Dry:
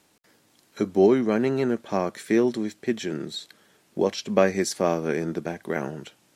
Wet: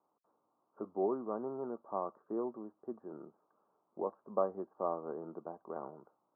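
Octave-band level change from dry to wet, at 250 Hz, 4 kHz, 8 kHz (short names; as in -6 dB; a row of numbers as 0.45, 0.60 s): -18.5 dB, under -40 dB, under -40 dB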